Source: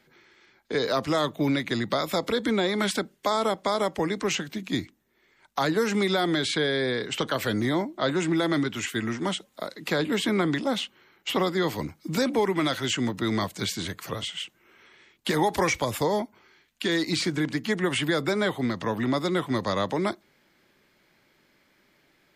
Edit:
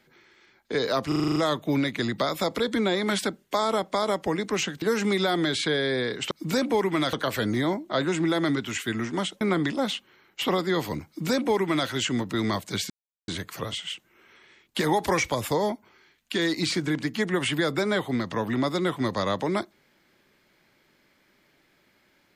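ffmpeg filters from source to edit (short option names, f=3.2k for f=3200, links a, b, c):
-filter_complex "[0:a]asplit=13[a][b][c][d][e][f][g][h][i][j][k][l][m];[a]atrim=end=1.122[n];[b]atrim=start=1.078:end=1.122[o];[c]atrim=start=1.078:end=1.122[p];[d]atrim=start=1.078:end=1.122[q];[e]atrim=start=1.078:end=1.122[r];[f]atrim=start=1.078:end=1.122[s];[g]atrim=start=1.078:end=1.122[t];[h]atrim=start=1.078:end=4.542[u];[i]atrim=start=5.718:end=7.212[v];[j]atrim=start=11.948:end=12.772[w];[k]atrim=start=7.208:end=9.492[x];[l]atrim=start=10.288:end=13.78,asetpts=PTS-STARTPTS,afade=t=out:st=3.488:d=0.004:c=hsin,apad=pad_dur=0.38[y];[m]atrim=start=13.78,asetpts=PTS-STARTPTS,afade=t=in:d=0.004:c=hsin[z];[n][o]acrossfade=d=0.004:c1=hsin:c2=hsin[aa];[aa][p]acrossfade=d=0.004:c1=hsin:c2=hsin[ab];[ab][q]acrossfade=d=0.004:c1=hsin:c2=hsin[ac];[ac][r]acrossfade=d=0.004:c1=hsin:c2=hsin[ad];[ad][s]acrossfade=d=0.004:c1=hsin:c2=hsin[ae];[ae][t]acrossfade=d=0.004:c1=hsin:c2=hsin[af];[af][u]acrossfade=d=0.004:c1=hsin:c2=hsin[ag];[ag][v]acrossfade=d=0.004:c1=hsin:c2=hsin[ah];[ah][w]acrossfade=d=0.004:c1=hsin:c2=hsin[ai];[ai][x]acrossfade=d=0.004:c1=hsin:c2=hsin[aj];[y][z]concat=n=2:v=0:a=1[ak];[aj][ak]acrossfade=d=0.004:c1=hsin:c2=hsin"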